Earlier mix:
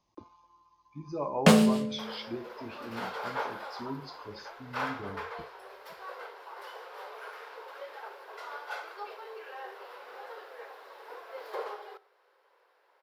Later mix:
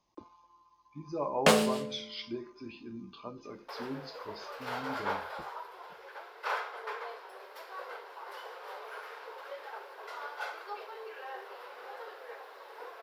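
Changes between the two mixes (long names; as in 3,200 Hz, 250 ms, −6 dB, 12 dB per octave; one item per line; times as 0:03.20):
first sound: add parametric band 190 Hz −14.5 dB 0.46 octaves
second sound: entry +1.70 s
master: add parametric band 91 Hz −5.5 dB 1.5 octaves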